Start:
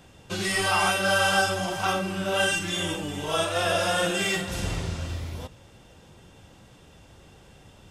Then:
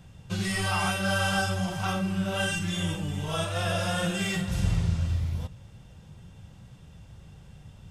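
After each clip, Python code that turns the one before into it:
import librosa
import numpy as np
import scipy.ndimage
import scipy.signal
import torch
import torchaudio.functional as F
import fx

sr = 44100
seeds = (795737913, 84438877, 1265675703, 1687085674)

y = fx.low_shelf_res(x, sr, hz=220.0, db=9.5, q=1.5)
y = y * 10.0 ** (-5.0 / 20.0)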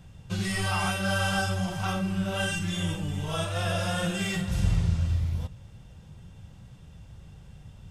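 y = fx.low_shelf(x, sr, hz=76.0, db=5.0)
y = y * 10.0 ** (-1.0 / 20.0)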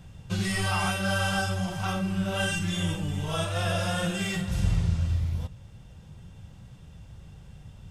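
y = fx.rider(x, sr, range_db=4, speed_s=2.0)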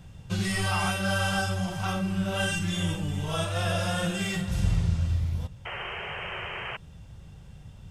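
y = fx.spec_paint(x, sr, seeds[0], shape='noise', start_s=5.65, length_s=1.12, low_hz=350.0, high_hz=3200.0, level_db=-36.0)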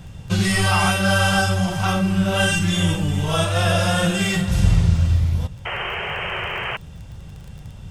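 y = fx.dmg_crackle(x, sr, seeds[1], per_s=22.0, level_db=-42.0)
y = y * 10.0 ** (9.0 / 20.0)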